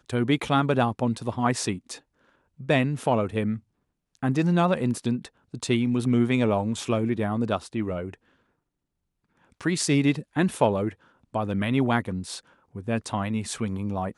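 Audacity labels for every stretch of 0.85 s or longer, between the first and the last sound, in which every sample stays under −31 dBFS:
8.140000	9.610000	silence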